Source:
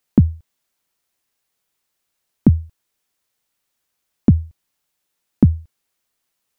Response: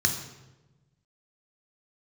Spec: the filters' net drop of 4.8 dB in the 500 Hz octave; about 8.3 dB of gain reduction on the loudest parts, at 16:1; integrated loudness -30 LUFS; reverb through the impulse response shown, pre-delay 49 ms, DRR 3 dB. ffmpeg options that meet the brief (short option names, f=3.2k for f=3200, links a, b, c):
-filter_complex "[0:a]equalizer=f=500:t=o:g=-7.5,acompressor=threshold=-15dB:ratio=16,asplit=2[a][b];[1:a]atrim=start_sample=2205,adelay=49[c];[b][c]afir=irnorm=-1:irlink=0,volume=-13.5dB[d];[a][d]amix=inputs=2:normalize=0,volume=-7dB"